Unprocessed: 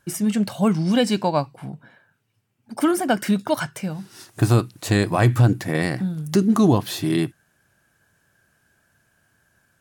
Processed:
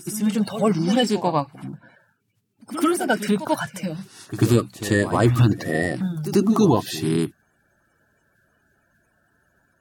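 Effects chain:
spectral magnitudes quantised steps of 30 dB
echo ahead of the sound 92 ms −12 dB

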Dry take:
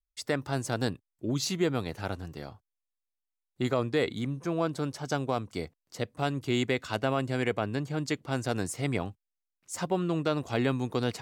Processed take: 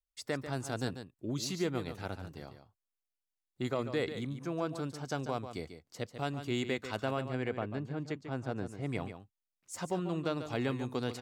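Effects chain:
0:07.20–0:08.88: low-pass filter 2,400 Hz → 1,100 Hz 6 dB per octave
single-tap delay 143 ms −10 dB
level −6 dB

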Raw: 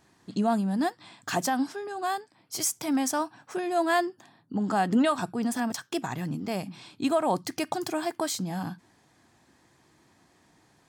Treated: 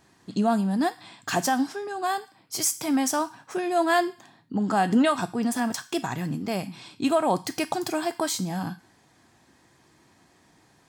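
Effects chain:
on a send: high-pass filter 1,300 Hz 12 dB per octave + convolution reverb RT60 0.50 s, pre-delay 3 ms, DRR 10.5 dB
on the sum: level +2.5 dB

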